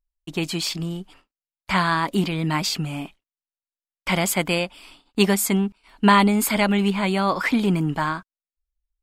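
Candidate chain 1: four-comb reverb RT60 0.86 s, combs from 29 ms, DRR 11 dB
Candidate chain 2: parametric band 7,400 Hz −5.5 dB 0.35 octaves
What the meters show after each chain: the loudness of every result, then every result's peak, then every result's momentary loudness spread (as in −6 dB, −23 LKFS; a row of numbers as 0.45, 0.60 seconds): −21.5, −22.0 LKFS; −3.0, −2.5 dBFS; 14, 13 LU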